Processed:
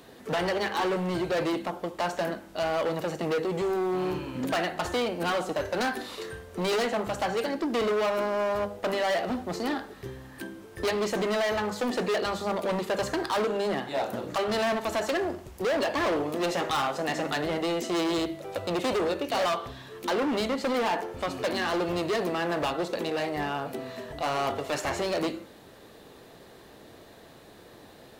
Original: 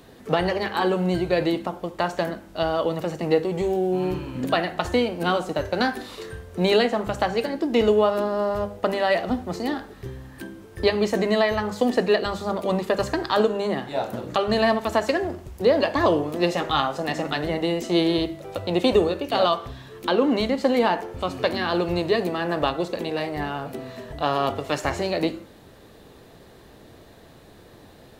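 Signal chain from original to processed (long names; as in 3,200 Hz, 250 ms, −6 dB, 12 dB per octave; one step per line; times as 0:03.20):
gain into a clipping stage and back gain 23 dB
low-shelf EQ 150 Hz −10 dB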